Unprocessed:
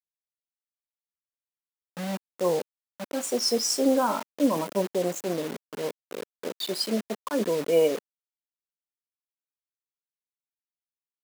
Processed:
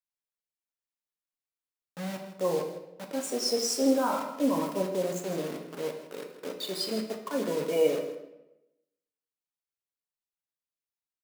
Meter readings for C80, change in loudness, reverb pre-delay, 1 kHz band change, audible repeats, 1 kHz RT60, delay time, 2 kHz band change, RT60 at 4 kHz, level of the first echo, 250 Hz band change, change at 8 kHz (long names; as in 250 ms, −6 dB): 8.5 dB, −3.0 dB, 6 ms, −3.0 dB, 1, 0.85 s, 161 ms, −2.5 dB, 0.65 s, −12.5 dB, −2.5 dB, −3.5 dB